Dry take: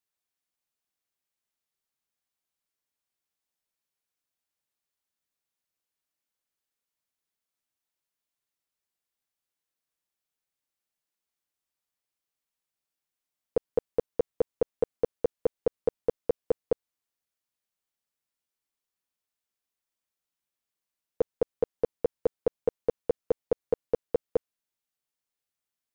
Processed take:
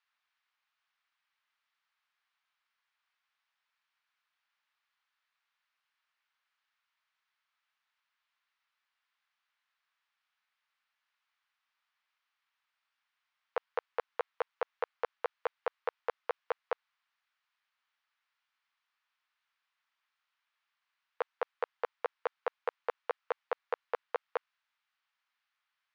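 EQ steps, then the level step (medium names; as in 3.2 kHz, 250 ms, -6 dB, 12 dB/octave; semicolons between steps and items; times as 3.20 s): high-pass 1.1 kHz 24 dB/octave; distance through air 250 m; tilt EQ -2 dB/octave; +17.0 dB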